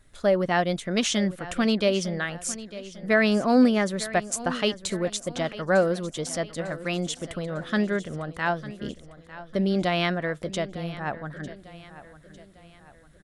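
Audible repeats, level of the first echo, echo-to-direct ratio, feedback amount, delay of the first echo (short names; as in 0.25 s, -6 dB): 3, -16.0 dB, -15.0 dB, 45%, 0.901 s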